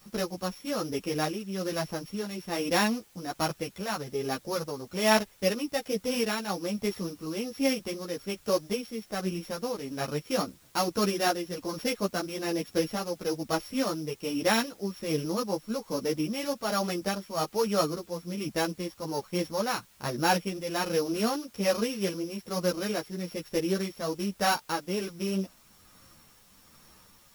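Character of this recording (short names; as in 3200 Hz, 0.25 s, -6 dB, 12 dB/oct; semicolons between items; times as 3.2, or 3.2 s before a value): a buzz of ramps at a fixed pitch in blocks of 8 samples; tremolo triangle 1.2 Hz, depth 60%; a quantiser's noise floor 10-bit, dither triangular; a shimmering, thickened sound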